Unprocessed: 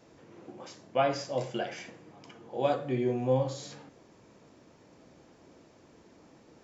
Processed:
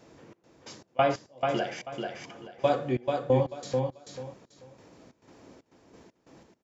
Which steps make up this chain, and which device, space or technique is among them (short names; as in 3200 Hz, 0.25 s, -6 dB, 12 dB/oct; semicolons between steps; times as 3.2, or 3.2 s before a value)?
trance gate with a delay (step gate "xx..x.x..xx..xx." 91 bpm -24 dB; feedback echo 0.438 s, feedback 24%, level -4.5 dB); gain +3 dB